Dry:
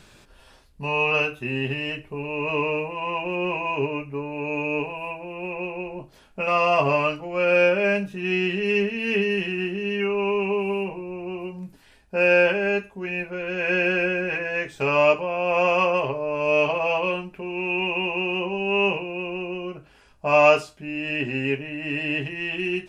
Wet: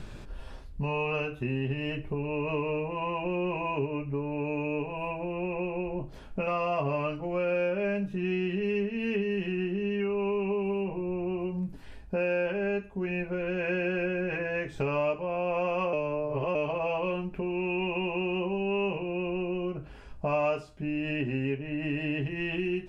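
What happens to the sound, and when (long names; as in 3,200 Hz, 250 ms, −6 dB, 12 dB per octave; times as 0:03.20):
0:15.93–0:16.55: reverse
whole clip: spectral tilt −2.5 dB per octave; downward compressor 3 to 1, threshold −34 dBFS; level +3 dB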